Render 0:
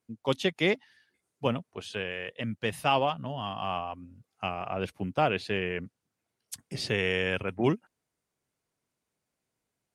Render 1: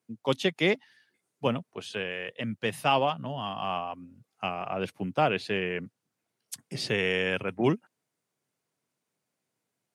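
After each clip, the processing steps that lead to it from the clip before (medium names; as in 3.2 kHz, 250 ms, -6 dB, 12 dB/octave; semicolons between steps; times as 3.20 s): high-pass 110 Hz 24 dB/octave; trim +1 dB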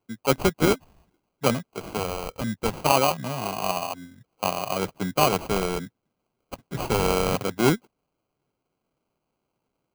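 sample-rate reducer 1.8 kHz, jitter 0%; trim +4.5 dB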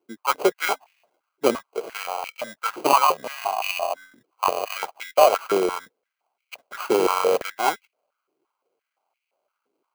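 step-sequenced high-pass 5.8 Hz 350–2300 Hz; trim -1.5 dB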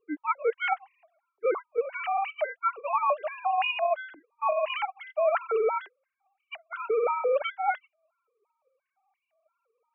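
formants replaced by sine waves; reverse; compression 8:1, threshold -27 dBFS, peak gain reduction 17.5 dB; reverse; trim +4 dB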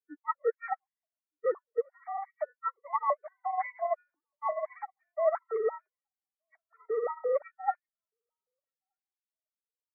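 knee-point frequency compression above 1.3 kHz 1.5:1; echo from a far wall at 210 m, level -30 dB; upward expansion 2.5:1, over -45 dBFS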